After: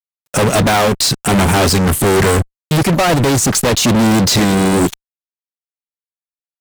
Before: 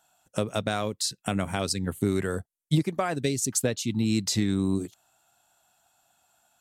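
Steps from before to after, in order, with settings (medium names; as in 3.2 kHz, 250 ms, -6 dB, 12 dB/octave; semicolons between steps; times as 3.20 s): de-esser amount 90%; fuzz box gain 44 dB, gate -53 dBFS; peak limiter -14 dBFS, peak gain reduction 4 dB; trim +5 dB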